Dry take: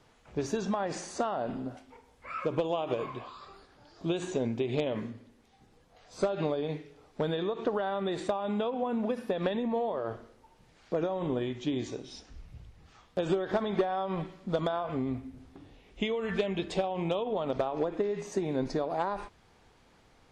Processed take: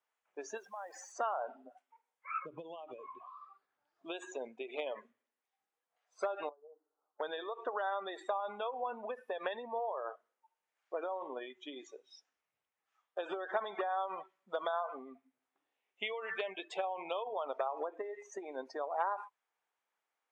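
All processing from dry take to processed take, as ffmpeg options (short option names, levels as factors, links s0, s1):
-filter_complex "[0:a]asettb=1/sr,asplit=3[s0][s1][s2];[s0]atrim=end=0.574[s3];[s1]atrim=start=0.57:end=1.12,asetpts=PTS-STARTPTS,afade=t=in:d=0.004:c=qsin,afade=t=out:st=0.546:d=0.004:c=qsin,acompressor=threshold=0.0158:ratio=4:attack=3.2:release=140:knee=1:detection=peak,acrusher=bits=9:dc=4:mix=0:aa=0.000001[s4];[s2]atrim=start=1.116[s5];[s3][s4]acrossfade=d=0.004:c1=hsin:c2=qsin[s6];[s6][s5]acrossfade=d=0.004:c1=qsin:c2=hsin,asettb=1/sr,asplit=3[s7][s8][s9];[s7]atrim=end=2.384[s10];[s8]atrim=start=2.38:end=4.05,asetpts=PTS-STARTPTS,afade=t=in:d=0.004:c=qsin,afade=t=out:st=1.666:d=0.004:c=qsin,acrossover=split=300|3000[s11][s12][s13];[s12]acompressor=threshold=0.00794:ratio=4:attack=3.2:release=140:knee=2.83:detection=peak[s14];[s11][s14][s13]amix=inputs=3:normalize=0,bass=f=250:g=14,treble=f=4000:g=-6[s15];[s9]atrim=start=4.046[s16];[s10][s15]acrossfade=d=0.004:c1=hsin:c2=qsin[s17];[s17][s16]acrossfade=d=0.004:c1=qsin:c2=hsin,asettb=1/sr,asplit=3[s18][s19][s20];[s18]atrim=end=6.494[s21];[s19]atrim=start=6.49:end=7.2,asetpts=PTS-STARTPTS,afade=t=in:d=0.004:c=qsin,afade=t=out:st=0.706:d=0.004:c=qsin,asuperpass=centerf=610:order=12:qfactor=0.54,acompressor=threshold=0.00501:ratio=3:attack=3.2:release=140:knee=1:detection=peak,asplit=2[s22][s23];[s23]adelay=13,volume=0.531[s24];[s22][s24]amix=inputs=2:normalize=0,atrim=end_sample=31311[s25];[s20]atrim=start=7.196[s26];[s21][s25]acrossfade=d=0.004:c1=hsin:c2=qsin[s27];[s27][s26]acrossfade=d=0.004:c1=qsin:c2=hsin,highpass=860,afftdn=nr=22:nf=-42,equalizer=f=4400:w=1.6:g=-9.5,volume=1.19"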